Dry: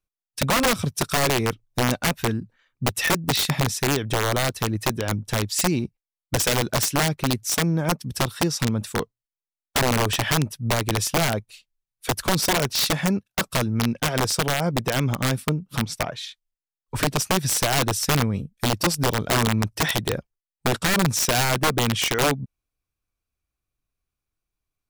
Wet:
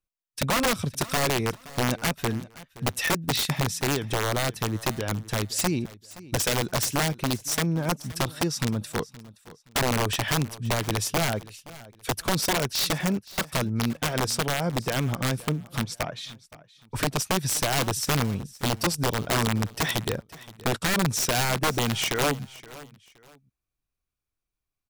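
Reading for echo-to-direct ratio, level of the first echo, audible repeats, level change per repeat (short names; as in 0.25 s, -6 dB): -18.5 dB, -19.0 dB, 2, -10.5 dB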